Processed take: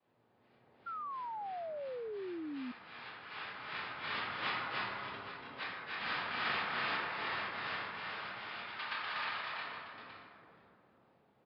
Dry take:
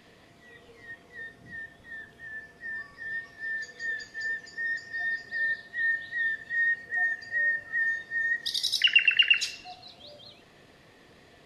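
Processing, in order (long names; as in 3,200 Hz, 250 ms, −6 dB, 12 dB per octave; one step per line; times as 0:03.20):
source passing by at 0:05.01, 12 m/s, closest 1.6 metres
reverb reduction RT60 0.56 s
gate with flip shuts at −39 dBFS, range −38 dB
cochlear-implant simulation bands 2
downsampling to 11,025 Hz
high-frequency loss of the air 410 metres
on a send: multi-tap delay 283/313/821 ms −4/−3.5/−12 dB
on the sum: dense smooth reverb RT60 2.1 s, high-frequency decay 0.4×, DRR −6.5 dB
sound drawn into the spectrogram fall, 0:00.86–0:02.72, 240–1,400 Hz −54 dBFS
level +12.5 dB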